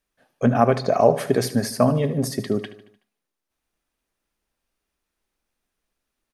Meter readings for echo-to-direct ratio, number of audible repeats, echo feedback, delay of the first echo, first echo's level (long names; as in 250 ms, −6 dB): −13.5 dB, 4, 54%, 75 ms, −15.0 dB